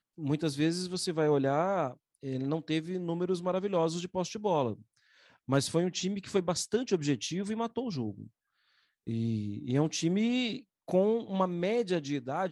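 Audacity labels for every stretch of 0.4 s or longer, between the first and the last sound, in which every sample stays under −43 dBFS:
4.750000	5.480000	silence
8.270000	9.070000	silence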